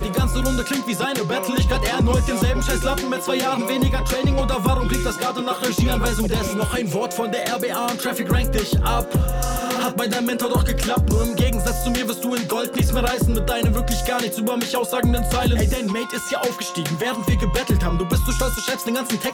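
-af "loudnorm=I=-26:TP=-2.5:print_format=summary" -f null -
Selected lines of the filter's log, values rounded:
Input Integrated:    -21.5 LUFS
Input True Peak:      -9.3 dBTP
Input LRA:             1.4 LU
Input Threshold:     -31.5 LUFS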